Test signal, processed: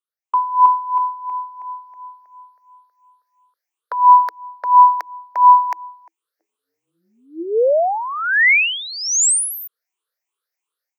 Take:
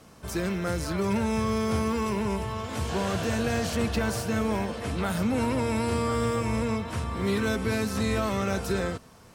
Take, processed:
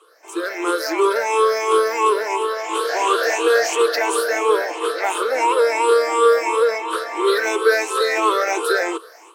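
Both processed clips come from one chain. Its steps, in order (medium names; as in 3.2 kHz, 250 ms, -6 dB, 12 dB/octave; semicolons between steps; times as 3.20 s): drifting ripple filter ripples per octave 0.66, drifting +2.9 Hz, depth 17 dB; rippled Chebyshev high-pass 320 Hz, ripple 6 dB; level rider gain up to 12 dB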